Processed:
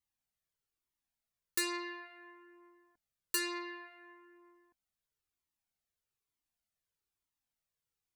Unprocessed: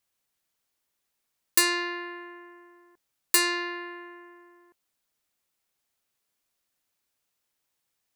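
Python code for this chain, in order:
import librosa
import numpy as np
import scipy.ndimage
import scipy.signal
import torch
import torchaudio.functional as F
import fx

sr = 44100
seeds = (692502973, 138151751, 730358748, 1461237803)

y = fx.low_shelf(x, sr, hz=270.0, db=8.5)
y = fx.notch(y, sr, hz=560.0, q=12.0)
y = fx.comb_cascade(y, sr, direction='falling', hz=1.1)
y = y * librosa.db_to_amplitude(-8.0)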